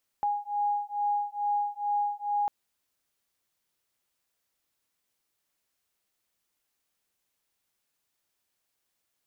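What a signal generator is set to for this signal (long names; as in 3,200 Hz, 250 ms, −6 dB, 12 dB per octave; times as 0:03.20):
two tones that beat 822 Hz, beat 2.3 Hz, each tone −29.5 dBFS 2.25 s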